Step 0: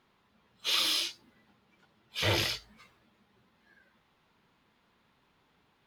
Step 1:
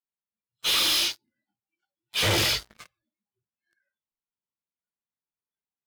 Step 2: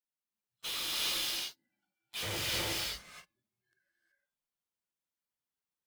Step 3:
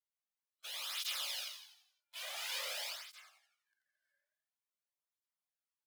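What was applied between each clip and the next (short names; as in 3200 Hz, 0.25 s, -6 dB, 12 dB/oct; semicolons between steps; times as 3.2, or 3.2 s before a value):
spectral noise reduction 22 dB; vocal rider 2 s; sample leveller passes 5; gain -1.5 dB
hard clip -32.5 dBFS, distortion -10 dB; non-linear reverb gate 0.4 s rising, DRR -3 dB; gain -4.5 dB
elliptic high-pass 550 Hz, stop band 50 dB; frequency-shifting echo 86 ms, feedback 47%, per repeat +37 Hz, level -5 dB; tape flanging out of phase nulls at 0.48 Hz, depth 2.7 ms; gain -3.5 dB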